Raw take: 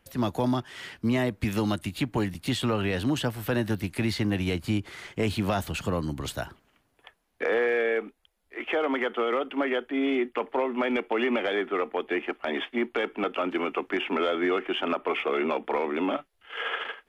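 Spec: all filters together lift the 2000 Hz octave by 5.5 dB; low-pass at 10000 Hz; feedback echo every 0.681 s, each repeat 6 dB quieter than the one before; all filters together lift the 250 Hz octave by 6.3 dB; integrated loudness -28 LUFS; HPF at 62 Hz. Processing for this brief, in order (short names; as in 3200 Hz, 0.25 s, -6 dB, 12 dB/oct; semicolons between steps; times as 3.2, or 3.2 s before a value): HPF 62 Hz; LPF 10000 Hz; bell 250 Hz +7.5 dB; bell 2000 Hz +6.5 dB; feedback echo 0.681 s, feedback 50%, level -6 dB; gain -5 dB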